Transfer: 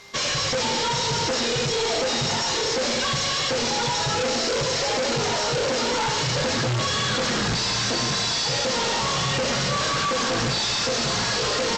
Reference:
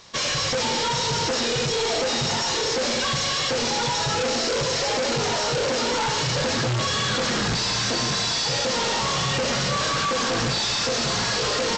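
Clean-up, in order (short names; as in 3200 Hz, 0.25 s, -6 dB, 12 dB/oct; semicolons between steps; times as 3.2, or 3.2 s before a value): de-click; de-hum 400.5 Hz, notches 34; notch 2100 Hz, Q 30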